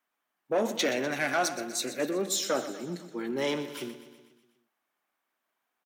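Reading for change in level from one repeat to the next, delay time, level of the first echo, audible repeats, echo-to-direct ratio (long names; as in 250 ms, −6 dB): −4.5 dB, 123 ms, −13.0 dB, 5, −11.0 dB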